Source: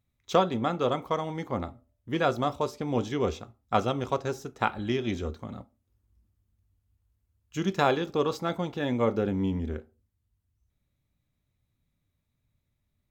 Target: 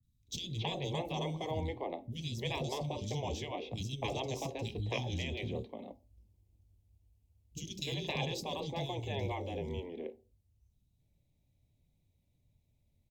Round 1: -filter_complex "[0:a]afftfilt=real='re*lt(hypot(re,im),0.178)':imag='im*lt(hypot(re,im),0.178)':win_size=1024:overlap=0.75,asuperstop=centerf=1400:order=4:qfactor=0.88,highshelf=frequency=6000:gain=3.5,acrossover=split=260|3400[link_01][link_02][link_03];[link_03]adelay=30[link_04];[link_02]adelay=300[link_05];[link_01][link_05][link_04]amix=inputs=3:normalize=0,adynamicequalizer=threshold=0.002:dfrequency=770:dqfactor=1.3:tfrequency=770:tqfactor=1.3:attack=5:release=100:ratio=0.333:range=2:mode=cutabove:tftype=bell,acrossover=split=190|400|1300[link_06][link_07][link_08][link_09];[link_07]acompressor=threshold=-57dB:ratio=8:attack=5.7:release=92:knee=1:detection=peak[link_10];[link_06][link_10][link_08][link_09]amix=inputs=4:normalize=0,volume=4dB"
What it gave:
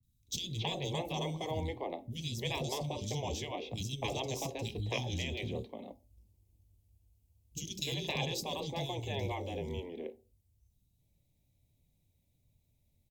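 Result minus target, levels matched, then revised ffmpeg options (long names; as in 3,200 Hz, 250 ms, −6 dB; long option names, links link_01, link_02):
8,000 Hz band +4.5 dB
-filter_complex "[0:a]afftfilt=real='re*lt(hypot(re,im),0.178)':imag='im*lt(hypot(re,im),0.178)':win_size=1024:overlap=0.75,asuperstop=centerf=1400:order=4:qfactor=0.88,highshelf=frequency=6000:gain=-6,acrossover=split=260|3400[link_01][link_02][link_03];[link_03]adelay=30[link_04];[link_02]adelay=300[link_05];[link_01][link_05][link_04]amix=inputs=3:normalize=0,adynamicequalizer=threshold=0.002:dfrequency=770:dqfactor=1.3:tfrequency=770:tqfactor=1.3:attack=5:release=100:ratio=0.333:range=2:mode=cutabove:tftype=bell,acrossover=split=190|400|1300[link_06][link_07][link_08][link_09];[link_07]acompressor=threshold=-57dB:ratio=8:attack=5.7:release=92:knee=1:detection=peak[link_10];[link_06][link_10][link_08][link_09]amix=inputs=4:normalize=0,volume=4dB"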